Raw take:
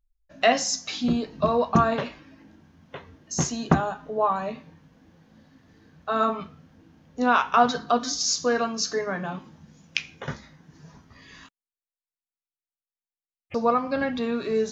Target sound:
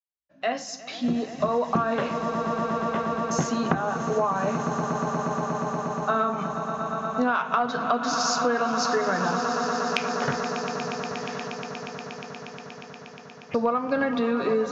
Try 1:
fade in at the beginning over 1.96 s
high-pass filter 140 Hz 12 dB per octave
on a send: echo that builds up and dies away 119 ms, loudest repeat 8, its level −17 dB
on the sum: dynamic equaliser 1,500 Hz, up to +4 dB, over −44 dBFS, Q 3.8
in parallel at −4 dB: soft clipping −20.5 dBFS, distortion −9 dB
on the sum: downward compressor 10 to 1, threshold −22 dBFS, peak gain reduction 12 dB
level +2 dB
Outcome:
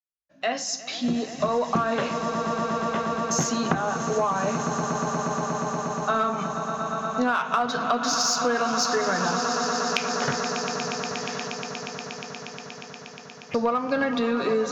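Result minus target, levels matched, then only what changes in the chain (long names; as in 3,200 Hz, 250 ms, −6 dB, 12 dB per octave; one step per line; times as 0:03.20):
soft clipping: distortion +9 dB; 8,000 Hz band +6.0 dB
add after high-pass filter: high-shelf EQ 4,100 Hz −11.5 dB
change: soft clipping −12 dBFS, distortion −18 dB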